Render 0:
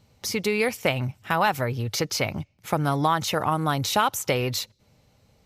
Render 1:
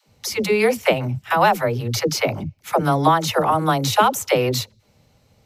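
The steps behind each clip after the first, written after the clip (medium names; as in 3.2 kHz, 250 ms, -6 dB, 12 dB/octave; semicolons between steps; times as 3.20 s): phase dispersion lows, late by 88 ms, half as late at 330 Hz; dynamic bell 570 Hz, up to +5 dB, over -35 dBFS, Q 0.71; trim +3 dB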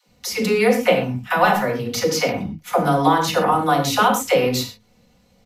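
comb 4.1 ms, depth 48%; reverberation, pre-delay 5 ms, DRR 2.5 dB; trim -2 dB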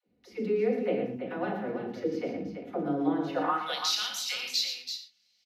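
graphic EQ 125/250/500/1000/8000 Hz -8/-4/-9/-12/-10 dB; band-pass sweep 360 Hz -> 4.9 kHz, 3.24–3.82 s; multi-tap echo 116/333 ms -9/-8 dB; trim +4.5 dB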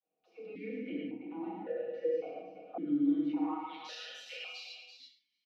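comb 6.3 ms, depth 82%; gated-style reverb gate 170 ms flat, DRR -0.5 dB; stepped vowel filter 1.8 Hz; trim -1.5 dB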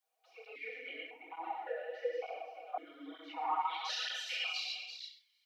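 high-pass 700 Hz 24 dB/octave; band-stop 2.6 kHz, Q 14; cancelling through-zero flanger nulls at 1.1 Hz, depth 6.4 ms; trim +11 dB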